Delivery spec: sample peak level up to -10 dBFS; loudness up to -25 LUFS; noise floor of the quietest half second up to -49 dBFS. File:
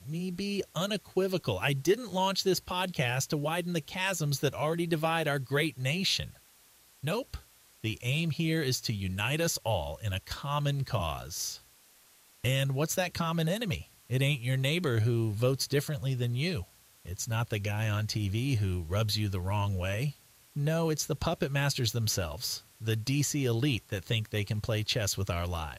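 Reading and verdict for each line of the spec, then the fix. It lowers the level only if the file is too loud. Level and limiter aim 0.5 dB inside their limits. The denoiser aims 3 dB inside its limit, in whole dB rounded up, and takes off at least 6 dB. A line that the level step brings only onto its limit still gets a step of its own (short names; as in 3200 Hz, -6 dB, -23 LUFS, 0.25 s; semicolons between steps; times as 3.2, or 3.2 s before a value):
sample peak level -14.5 dBFS: OK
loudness -31.0 LUFS: OK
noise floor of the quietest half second -61 dBFS: OK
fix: none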